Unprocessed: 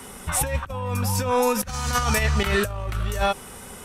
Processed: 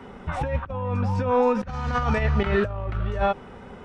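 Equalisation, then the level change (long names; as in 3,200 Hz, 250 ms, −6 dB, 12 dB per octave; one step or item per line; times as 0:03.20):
head-to-tape spacing loss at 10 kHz 41 dB
low-shelf EQ 99 Hz −5.5 dB
notch filter 1,100 Hz, Q 22
+3.5 dB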